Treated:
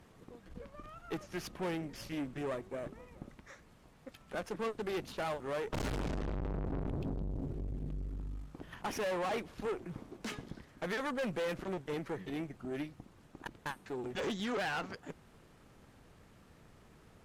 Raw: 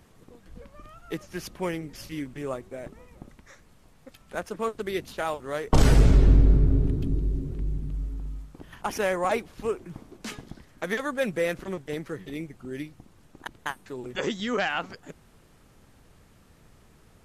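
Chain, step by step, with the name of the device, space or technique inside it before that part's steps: tube preamp driven hard (tube stage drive 33 dB, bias 0.55; low shelf 90 Hz -5.5 dB; high shelf 4900 Hz -7.5 dB); gain +1 dB

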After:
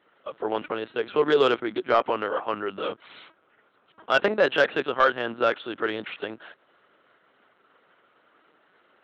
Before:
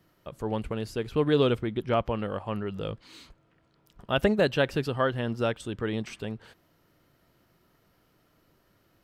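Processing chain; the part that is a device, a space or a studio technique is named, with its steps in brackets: talking toy (LPC vocoder at 8 kHz pitch kept; HPF 390 Hz 12 dB/oct; bell 1400 Hz +6 dB 0.55 oct; soft clip -15 dBFS, distortion -18 dB); gain +6.5 dB

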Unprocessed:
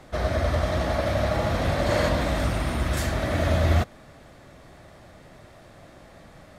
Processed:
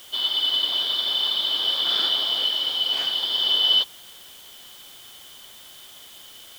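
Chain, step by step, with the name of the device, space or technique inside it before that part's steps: split-band scrambled radio (four-band scrambler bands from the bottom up 3412; BPF 340–3000 Hz; white noise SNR 22 dB); gain +4 dB

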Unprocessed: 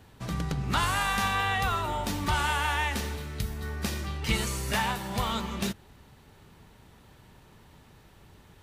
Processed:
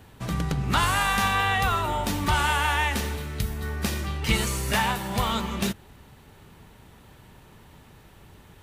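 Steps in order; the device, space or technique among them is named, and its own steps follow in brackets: exciter from parts (in parallel at -10.5 dB: HPF 4300 Hz 12 dB/oct + soft clip -39 dBFS, distortion -10 dB + HPF 2800 Hz 24 dB/oct); on the sum: gain +4 dB

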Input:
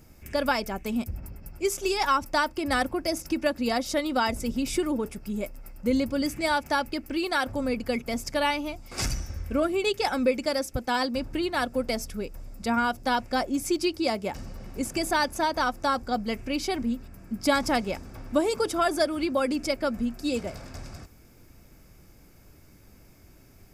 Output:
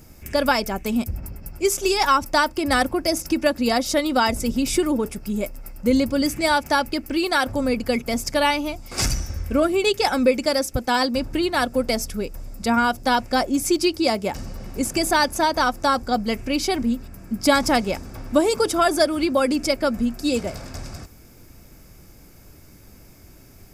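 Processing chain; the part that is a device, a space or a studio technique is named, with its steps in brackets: exciter from parts (in parallel at -8.5 dB: HPF 3300 Hz 12 dB/oct + soft clip -26 dBFS, distortion -19 dB); on the sum: gain +6 dB

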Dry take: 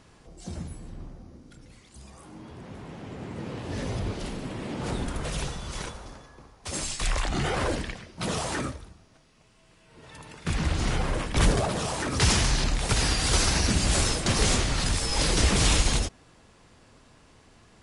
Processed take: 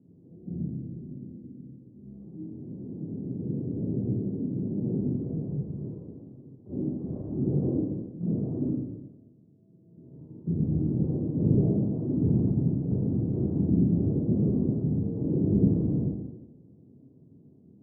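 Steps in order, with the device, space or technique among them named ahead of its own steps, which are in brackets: HPF 120 Hz 24 dB/oct; next room (LPF 340 Hz 24 dB/oct; reverb RT60 1.1 s, pre-delay 22 ms, DRR -6 dB); 6.69–7.21 bell 410 Hz +5.5 dB 3 oct

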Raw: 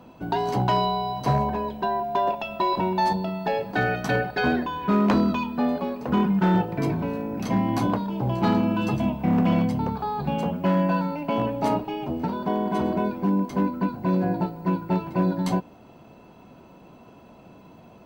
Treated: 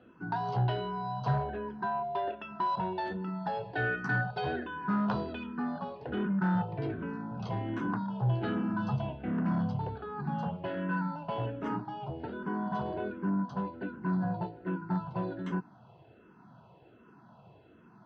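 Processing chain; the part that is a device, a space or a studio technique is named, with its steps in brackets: barber-pole phaser into a guitar amplifier (endless phaser -1.3 Hz; soft clip -18 dBFS, distortion -18 dB; speaker cabinet 79–4400 Hz, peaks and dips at 120 Hz +7 dB, 260 Hz -5 dB, 560 Hz -5 dB, 1500 Hz +7 dB, 2300 Hz -9 dB, 4000 Hz -4 dB); gain -4.5 dB

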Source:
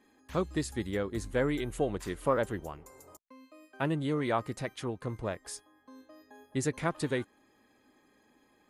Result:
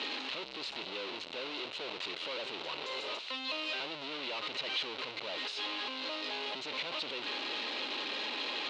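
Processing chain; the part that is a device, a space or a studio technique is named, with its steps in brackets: home computer beeper (infinite clipping; speaker cabinet 550–4200 Hz, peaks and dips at 750 Hz -6 dB, 1200 Hz -4 dB, 1700 Hz -8 dB, 2800 Hz +7 dB, 4000 Hz +10 dB)

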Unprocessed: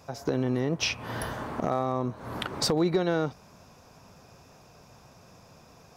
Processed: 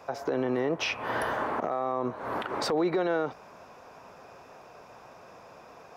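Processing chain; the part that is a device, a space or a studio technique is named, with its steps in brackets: DJ mixer with the lows and highs turned down (three-band isolator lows -16 dB, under 320 Hz, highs -13 dB, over 2700 Hz; limiter -27 dBFS, peak gain reduction 10.5 dB); gain +7.5 dB

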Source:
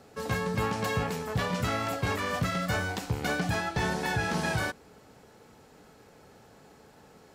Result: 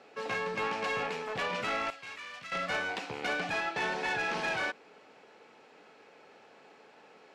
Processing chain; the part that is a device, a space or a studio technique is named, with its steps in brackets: intercom (BPF 360–4300 Hz; bell 2500 Hz +7 dB 0.52 oct; soft clip -25 dBFS, distortion -16 dB); 1.9–2.52 passive tone stack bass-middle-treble 5-5-5

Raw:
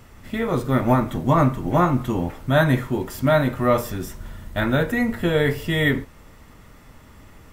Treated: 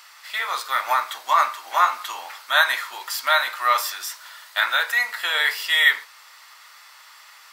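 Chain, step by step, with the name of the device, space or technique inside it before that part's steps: headphones lying on a table (HPF 1000 Hz 24 dB/oct; bell 4500 Hz +9.5 dB 0.59 oct); gain +6.5 dB

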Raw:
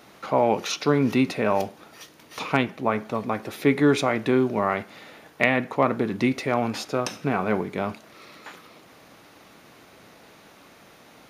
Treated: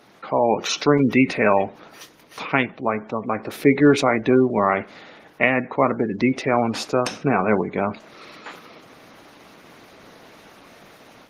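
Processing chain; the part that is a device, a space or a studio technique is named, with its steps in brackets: 1.02–2.67 dynamic EQ 2000 Hz, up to +7 dB, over -41 dBFS, Q 2; noise-suppressed video call (HPF 110 Hz 6 dB/oct; spectral gate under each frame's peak -25 dB strong; AGC gain up to 6 dB; Opus 20 kbps 48000 Hz)

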